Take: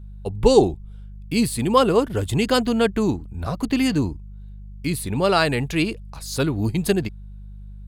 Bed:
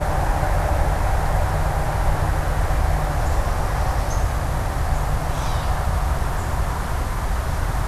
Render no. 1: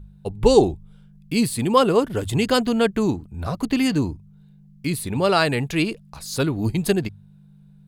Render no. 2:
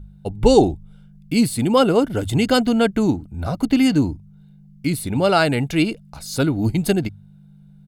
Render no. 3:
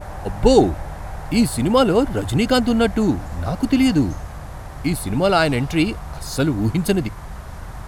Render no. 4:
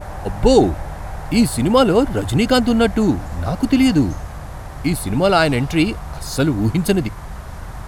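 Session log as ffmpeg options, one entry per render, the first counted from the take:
-af "bandreject=f=50:t=h:w=4,bandreject=f=100:t=h:w=4"
-af "equalizer=f=300:w=1.8:g=8.5,aecho=1:1:1.4:0.42"
-filter_complex "[1:a]volume=0.282[s0];[0:a][s0]amix=inputs=2:normalize=0"
-af "volume=1.26,alimiter=limit=0.794:level=0:latency=1"

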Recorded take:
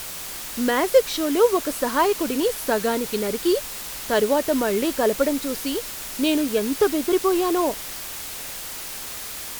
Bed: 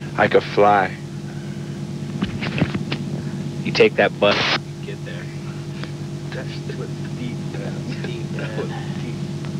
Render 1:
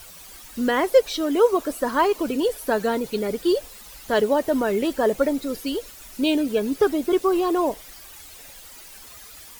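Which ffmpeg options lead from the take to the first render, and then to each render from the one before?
-af "afftdn=nr=13:nf=-34"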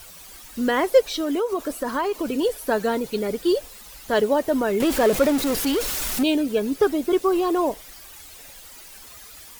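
-filter_complex "[0:a]asettb=1/sr,asplit=3[s0][s1][s2];[s0]atrim=end=1.064[s3];[s1]atrim=start=1.06:end=2.34,asetpts=PTS-STARTPTS,afade=t=in:d=0.004:c=qsin,afade=t=out:st=1.276:d=0.004:c=qsin,acompressor=threshold=0.1:ratio=6:attack=3.2:release=140:knee=1:detection=peak[s4];[s2]atrim=start=2.336[s5];[s3][s4]acrossfade=d=0.004:c1=hsin:c2=qsin[s6];[s6][s5]acrossfade=d=0.004:c1=qsin:c2=hsin,asettb=1/sr,asplit=3[s7][s8][s9];[s7]atrim=end=4.804[s10];[s8]atrim=start=4.8:end=6.23,asetpts=PTS-STARTPTS,afade=t=in:d=0.004:c=qsin,afade=t=out:st=1.426:d=0.004:c=qsin,aeval=exprs='val(0)+0.5*0.0794*sgn(val(0))':c=same[s11];[s9]atrim=start=6.226[s12];[s10][s11]acrossfade=d=0.004:c1=hsin:c2=qsin[s13];[s13][s12]acrossfade=d=0.004:c1=qsin:c2=hsin"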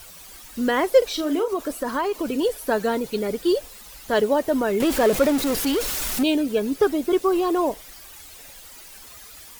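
-filter_complex "[0:a]asettb=1/sr,asplit=3[s0][s1][s2];[s0]atrim=end=0.984[s3];[s1]atrim=start=0.98:end=1.48,asetpts=PTS-STARTPTS,afade=t=in:d=0.004:c=qsin,afade=t=out:st=0.496:d=0.004:c=qsin,asplit=2[s4][s5];[s5]adelay=39,volume=0.376[s6];[s4][s6]amix=inputs=2:normalize=0,atrim=end_sample=22050[s7];[s2]atrim=start=1.476[s8];[s3][s7]acrossfade=d=0.004:c1=hsin:c2=qsin[s9];[s9][s8]acrossfade=d=0.004:c1=qsin:c2=hsin"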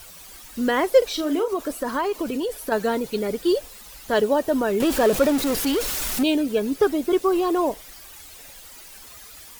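-filter_complex "[0:a]asettb=1/sr,asplit=3[s0][s1][s2];[s0]atrim=end=2.234[s3];[s1]atrim=start=2.23:end=2.72,asetpts=PTS-STARTPTS,afade=t=in:d=0.004:c=qsin,afade=t=out:st=0.486:d=0.004:c=qsin,acompressor=threshold=0.0794:ratio=6:attack=3.2:release=140:knee=1:detection=peak[s4];[s2]atrim=start=2.716[s5];[s3][s4]acrossfade=d=0.004:c1=hsin:c2=qsin[s6];[s6][s5]acrossfade=d=0.004:c1=qsin:c2=hsin,asettb=1/sr,asplit=3[s7][s8][s9];[s7]atrim=end=4.174[s10];[s8]atrim=start=4.17:end=5.31,asetpts=PTS-STARTPTS,afade=t=in:d=0.004:c=qsin,afade=t=out:st=1.136:d=0.004:c=qsin,bandreject=f=2100:w=12[s11];[s9]atrim=start=5.306[s12];[s10][s11]acrossfade=d=0.004:c1=hsin:c2=qsin[s13];[s13][s12]acrossfade=d=0.004:c1=qsin:c2=hsin"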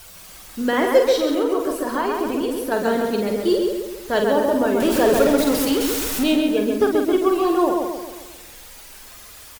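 -filter_complex "[0:a]asplit=2[s0][s1];[s1]adelay=48,volume=0.501[s2];[s0][s2]amix=inputs=2:normalize=0,asplit=2[s3][s4];[s4]adelay=134,lowpass=f=3200:p=1,volume=0.708,asplit=2[s5][s6];[s6]adelay=134,lowpass=f=3200:p=1,volume=0.5,asplit=2[s7][s8];[s8]adelay=134,lowpass=f=3200:p=1,volume=0.5,asplit=2[s9][s10];[s10]adelay=134,lowpass=f=3200:p=1,volume=0.5,asplit=2[s11][s12];[s12]adelay=134,lowpass=f=3200:p=1,volume=0.5,asplit=2[s13][s14];[s14]adelay=134,lowpass=f=3200:p=1,volume=0.5,asplit=2[s15][s16];[s16]adelay=134,lowpass=f=3200:p=1,volume=0.5[s17];[s5][s7][s9][s11][s13][s15][s17]amix=inputs=7:normalize=0[s18];[s3][s18]amix=inputs=2:normalize=0"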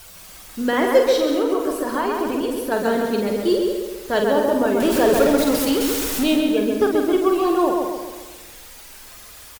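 -af "aecho=1:1:207:0.224"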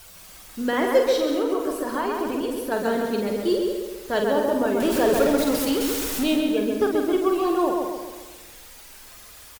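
-af "volume=0.668"

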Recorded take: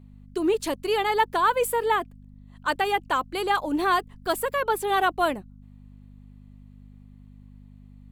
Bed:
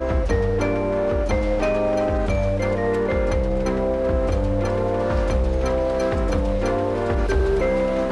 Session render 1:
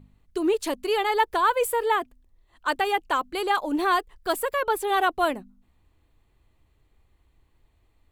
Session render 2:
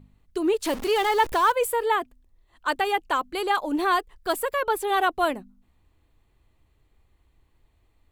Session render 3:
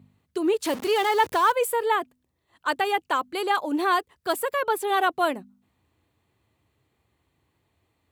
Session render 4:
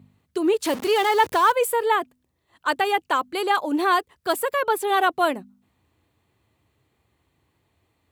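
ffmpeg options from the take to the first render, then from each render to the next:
-af "bandreject=f=50:t=h:w=4,bandreject=f=100:t=h:w=4,bandreject=f=150:t=h:w=4,bandreject=f=200:t=h:w=4,bandreject=f=250:t=h:w=4"
-filter_complex "[0:a]asettb=1/sr,asplit=3[s0][s1][s2];[s0]atrim=end=0.654[s3];[s1]atrim=start=0.65:end=1.52,asetpts=PTS-STARTPTS,afade=t=in:d=0.004:c=qsin,afade=t=out:st=0.866:d=0.004:c=qsin,aeval=exprs='val(0)+0.5*0.0316*sgn(val(0))':c=same[s4];[s2]atrim=start=1.516[s5];[s3][s4]acrossfade=d=0.004:c1=hsin:c2=qsin[s6];[s6][s5]acrossfade=d=0.004:c1=qsin:c2=hsin"
-af "highpass=f=89:w=0.5412,highpass=f=89:w=1.3066"
-af "volume=1.33"

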